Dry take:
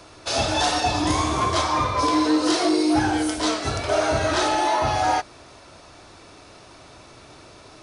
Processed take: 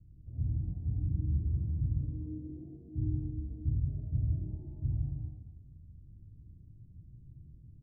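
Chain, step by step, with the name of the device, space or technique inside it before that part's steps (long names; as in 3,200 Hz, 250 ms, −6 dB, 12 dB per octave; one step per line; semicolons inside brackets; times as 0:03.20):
club heard from the street (brickwall limiter −15.5 dBFS, peak gain reduction 3.5 dB; low-pass filter 150 Hz 24 dB per octave; convolution reverb RT60 1.0 s, pre-delay 65 ms, DRR −1.5 dB)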